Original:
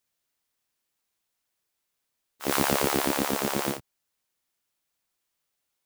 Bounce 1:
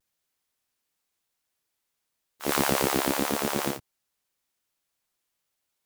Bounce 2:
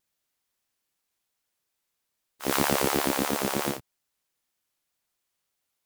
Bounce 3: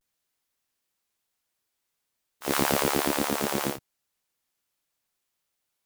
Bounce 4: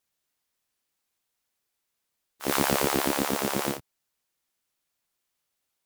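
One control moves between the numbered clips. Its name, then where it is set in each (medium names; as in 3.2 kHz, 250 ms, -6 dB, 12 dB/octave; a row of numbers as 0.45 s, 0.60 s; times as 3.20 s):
vibrato, rate: 0.94 Hz, 3.1 Hz, 0.4 Hz, 12 Hz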